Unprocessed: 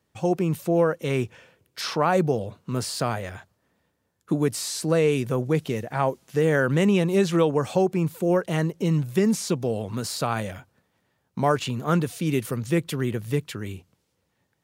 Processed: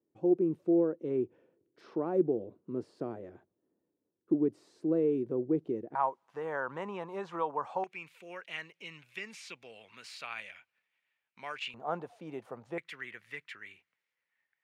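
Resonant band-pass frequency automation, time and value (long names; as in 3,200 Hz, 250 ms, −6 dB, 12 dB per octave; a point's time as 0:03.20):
resonant band-pass, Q 3.8
340 Hz
from 0:05.95 960 Hz
from 0:07.84 2,400 Hz
from 0:11.74 760 Hz
from 0:12.78 2,000 Hz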